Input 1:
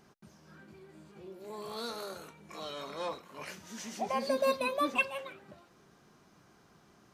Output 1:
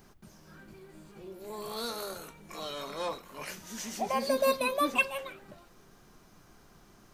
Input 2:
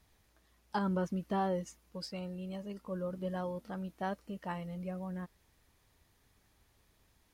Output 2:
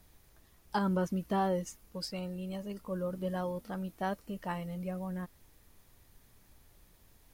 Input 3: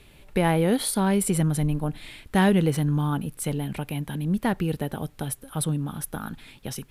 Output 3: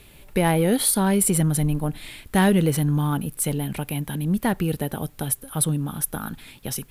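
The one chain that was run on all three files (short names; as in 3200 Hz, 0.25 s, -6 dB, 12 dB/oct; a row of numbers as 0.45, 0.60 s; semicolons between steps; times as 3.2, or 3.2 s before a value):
high shelf 9900 Hz +12 dB; added noise brown -64 dBFS; in parallel at -10.5 dB: hard clip -19.5 dBFS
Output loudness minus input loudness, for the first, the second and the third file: +2.5, +2.5, +2.5 LU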